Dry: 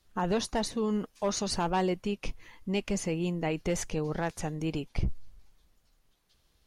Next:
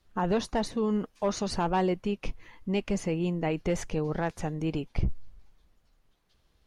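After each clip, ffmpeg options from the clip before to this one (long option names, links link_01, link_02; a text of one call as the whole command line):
ffmpeg -i in.wav -af "highshelf=frequency=4000:gain=-9.5,volume=2dB" out.wav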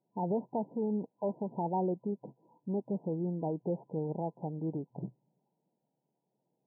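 ffmpeg -i in.wav -af "afftfilt=real='re*between(b*sr/4096,120,1000)':imag='im*between(b*sr/4096,120,1000)':win_size=4096:overlap=0.75,volume=-5dB" out.wav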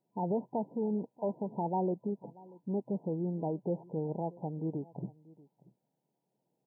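ffmpeg -i in.wav -af "aecho=1:1:635:0.0794" out.wav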